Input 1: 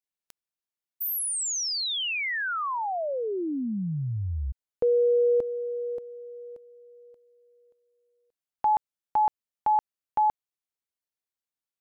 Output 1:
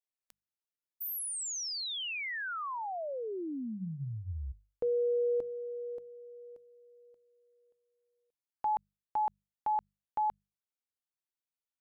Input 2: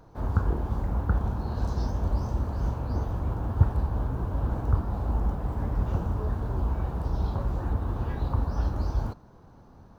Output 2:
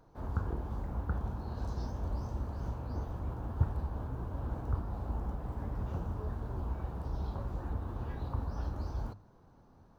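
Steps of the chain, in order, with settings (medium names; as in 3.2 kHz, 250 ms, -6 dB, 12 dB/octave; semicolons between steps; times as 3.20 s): hum notches 50/100/150/200 Hz; trim -8 dB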